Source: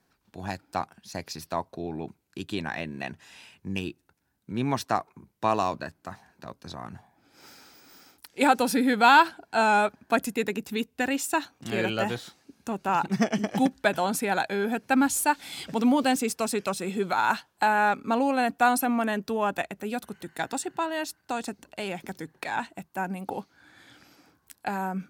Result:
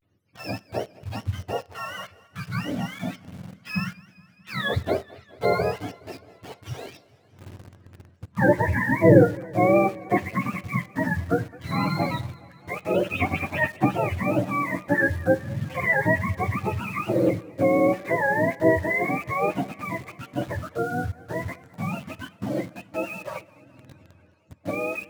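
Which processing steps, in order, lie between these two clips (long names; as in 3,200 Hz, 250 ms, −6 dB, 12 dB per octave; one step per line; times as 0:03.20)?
frequency axis turned over on the octave scale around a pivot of 690 Hz
four-comb reverb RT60 0.31 s, combs from 31 ms, DRR 17 dB
in parallel at −3 dB: bit reduction 7 bits
on the sum: pitch vibrato 0.32 Hz 65 cents
feedback echo with a swinging delay time 209 ms, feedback 68%, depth 101 cents, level −22.5 dB
level −1.5 dB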